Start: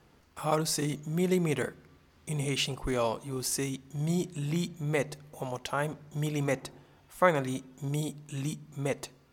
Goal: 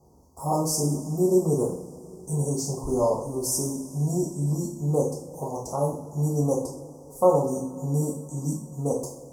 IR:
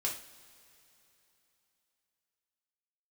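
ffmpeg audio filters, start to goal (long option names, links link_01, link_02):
-filter_complex "[0:a]asuperstop=centerf=2400:order=12:qfactor=0.54[link_01];[1:a]atrim=start_sample=2205,asetrate=37485,aresample=44100[link_02];[link_01][link_02]afir=irnorm=-1:irlink=0,volume=2dB"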